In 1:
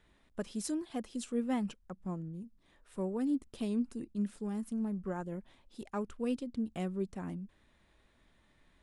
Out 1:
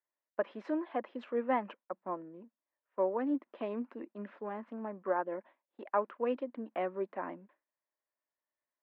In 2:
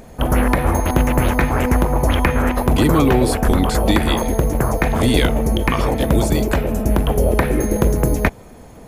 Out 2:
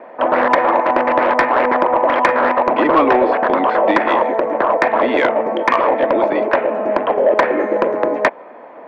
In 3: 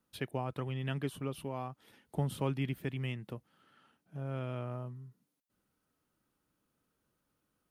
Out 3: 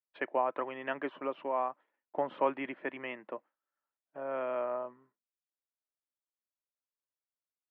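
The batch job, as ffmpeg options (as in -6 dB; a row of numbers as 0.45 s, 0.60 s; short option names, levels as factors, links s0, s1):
-af "agate=range=0.0224:threshold=0.00562:ratio=3:detection=peak,highpass=f=330:w=0.5412,highpass=f=330:w=1.3066,equalizer=f=420:t=q:w=4:g=-5,equalizer=f=590:t=q:w=4:g=7,equalizer=f=1000:t=q:w=4:g=7,equalizer=f=1800:t=q:w=4:g=3,lowpass=f=2300:w=0.5412,lowpass=f=2300:w=1.3066,acontrast=82,volume=0.841"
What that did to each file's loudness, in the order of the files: +0.5 LU, +2.5 LU, +2.5 LU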